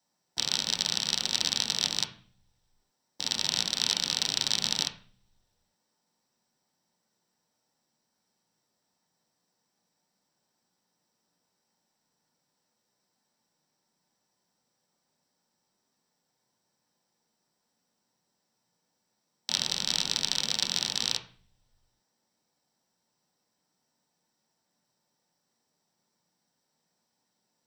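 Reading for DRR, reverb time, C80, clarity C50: 3.0 dB, 0.45 s, 16.0 dB, 10.5 dB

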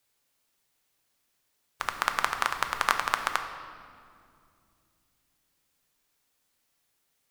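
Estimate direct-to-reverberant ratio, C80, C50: 5.5 dB, 9.0 dB, 8.0 dB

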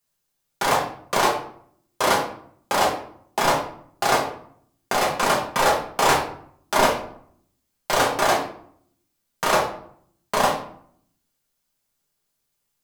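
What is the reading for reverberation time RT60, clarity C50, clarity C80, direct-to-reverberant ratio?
0.60 s, 6.0 dB, 10.0 dB, -4.0 dB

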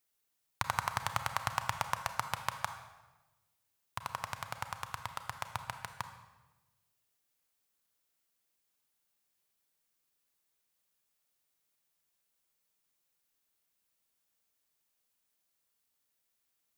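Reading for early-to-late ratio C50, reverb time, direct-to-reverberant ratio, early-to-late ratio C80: 9.0 dB, 1.2 s, 8.0 dB, 11.0 dB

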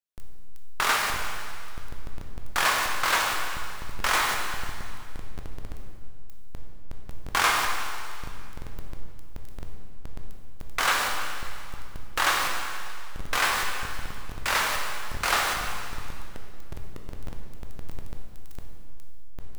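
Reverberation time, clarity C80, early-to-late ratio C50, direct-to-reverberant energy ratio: 2.3 s, 4.0 dB, 3.0 dB, 1.0 dB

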